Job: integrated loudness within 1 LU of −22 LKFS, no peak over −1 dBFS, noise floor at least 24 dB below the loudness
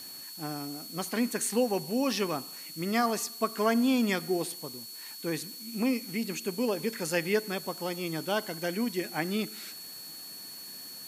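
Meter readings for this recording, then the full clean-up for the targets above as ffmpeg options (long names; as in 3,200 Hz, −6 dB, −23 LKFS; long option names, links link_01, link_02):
interfering tone 4,400 Hz; level of the tone −44 dBFS; background noise floor −44 dBFS; target noise floor −56 dBFS; integrated loudness −31.5 LKFS; sample peak −14.0 dBFS; target loudness −22.0 LKFS
→ -af "bandreject=frequency=4400:width=30"
-af "afftdn=noise_reduction=12:noise_floor=-44"
-af "volume=9.5dB"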